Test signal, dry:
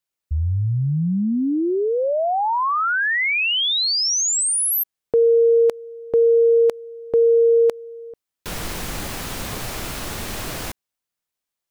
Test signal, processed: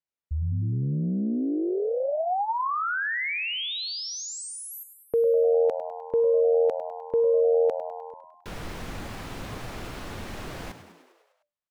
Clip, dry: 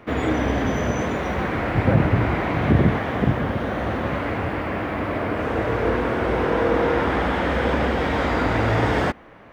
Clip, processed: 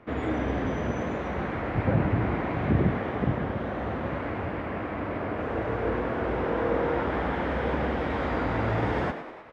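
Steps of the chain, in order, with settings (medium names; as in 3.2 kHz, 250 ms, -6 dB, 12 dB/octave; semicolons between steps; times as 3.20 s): low-pass 2.3 kHz 6 dB/octave; on a send: frequency-shifting echo 101 ms, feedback 62%, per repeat +84 Hz, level -11.5 dB; on the sum: trim -6.5 dB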